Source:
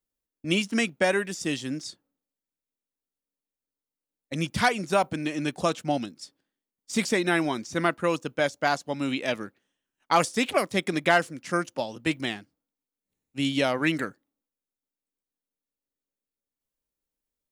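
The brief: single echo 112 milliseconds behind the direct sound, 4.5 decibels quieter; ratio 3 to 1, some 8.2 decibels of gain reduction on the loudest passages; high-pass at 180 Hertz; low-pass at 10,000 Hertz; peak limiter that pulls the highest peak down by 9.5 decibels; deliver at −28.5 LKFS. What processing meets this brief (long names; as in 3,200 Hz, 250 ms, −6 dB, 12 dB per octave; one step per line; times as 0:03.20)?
high-pass filter 180 Hz
low-pass filter 10,000 Hz
downward compressor 3 to 1, threshold −27 dBFS
brickwall limiter −21 dBFS
single-tap delay 112 ms −4.5 dB
level +4.5 dB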